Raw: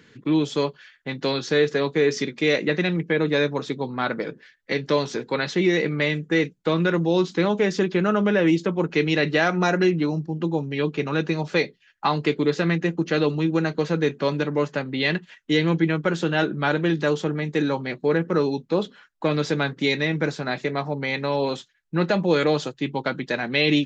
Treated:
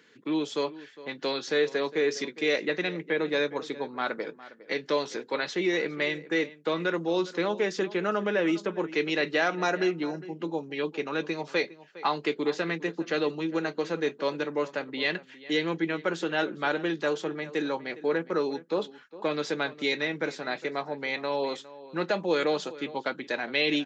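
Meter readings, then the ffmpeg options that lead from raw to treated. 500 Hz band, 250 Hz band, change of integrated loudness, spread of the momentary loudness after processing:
-5.5 dB, -8.5 dB, -6.0 dB, 7 LU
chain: -filter_complex "[0:a]highpass=310,asplit=2[a][b];[b]adelay=408.2,volume=-17dB,highshelf=f=4k:g=-9.18[c];[a][c]amix=inputs=2:normalize=0,volume=-4.5dB"

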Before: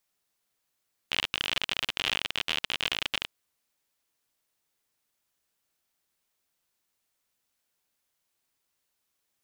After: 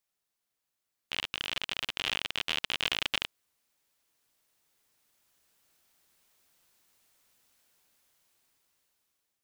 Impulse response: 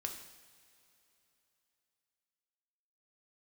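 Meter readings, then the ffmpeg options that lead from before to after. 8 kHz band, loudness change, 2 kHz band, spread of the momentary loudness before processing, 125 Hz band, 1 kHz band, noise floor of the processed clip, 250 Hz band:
-2.5 dB, -2.5 dB, -2.5 dB, 4 LU, -2.5 dB, -2.5 dB, -85 dBFS, -2.5 dB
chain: -af "dynaudnorm=f=820:g=5:m=16dB,volume=-6dB"

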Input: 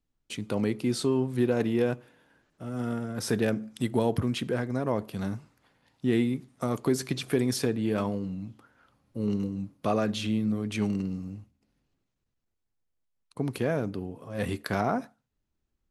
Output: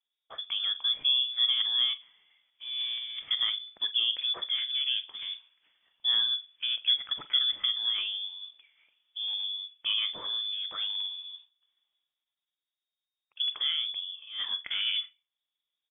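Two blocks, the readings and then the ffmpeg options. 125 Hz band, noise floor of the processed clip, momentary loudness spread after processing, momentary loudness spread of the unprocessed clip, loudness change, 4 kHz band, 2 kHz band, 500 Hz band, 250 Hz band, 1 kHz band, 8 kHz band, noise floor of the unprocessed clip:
under -35 dB, under -85 dBFS, 13 LU, 11 LU, +1.5 dB, +18.0 dB, -2.5 dB, under -25 dB, under -35 dB, -14.0 dB, under -40 dB, -81 dBFS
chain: -filter_complex "[0:a]lowshelf=f=190:t=q:w=3:g=-12.5,acrossover=split=200|780[a][b][c];[a]alimiter=level_in=12dB:limit=-24dB:level=0:latency=1,volume=-12dB[d];[d][b][c]amix=inputs=3:normalize=0,lowpass=f=3.1k:t=q:w=0.5098,lowpass=f=3.1k:t=q:w=0.6013,lowpass=f=3.1k:t=q:w=0.9,lowpass=f=3.1k:t=q:w=2.563,afreqshift=-3700,asplit=2[e][f];[f]adelay=44,volume=-14dB[g];[e][g]amix=inputs=2:normalize=0,volume=-4.5dB"

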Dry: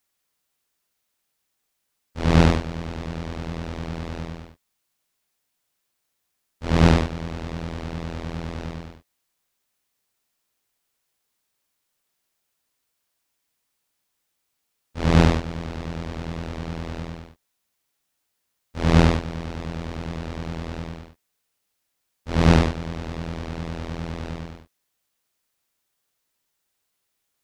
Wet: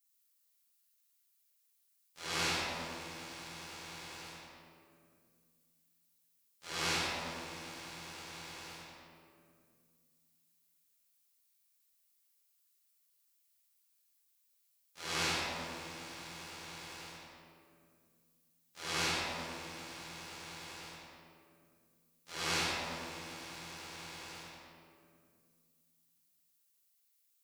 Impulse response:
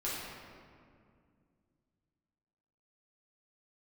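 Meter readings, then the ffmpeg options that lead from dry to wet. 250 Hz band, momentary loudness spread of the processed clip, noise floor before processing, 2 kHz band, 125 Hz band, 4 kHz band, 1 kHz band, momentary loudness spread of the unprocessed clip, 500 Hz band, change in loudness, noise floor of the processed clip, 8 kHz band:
-24.0 dB, 19 LU, -77 dBFS, -6.5 dB, -28.0 dB, -3.0 dB, -11.5 dB, 19 LU, -18.0 dB, -14.5 dB, -75 dBFS, +0.5 dB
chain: -filter_complex "[0:a]aderivative,asplit=2[a][b];[b]acrusher=bits=5:mix=0:aa=0.000001,volume=-10dB[c];[a][c]amix=inputs=2:normalize=0[d];[1:a]atrim=start_sample=2205[e];[d][e]afir=irnorm=-1:irlink=0,volume=-2dB"

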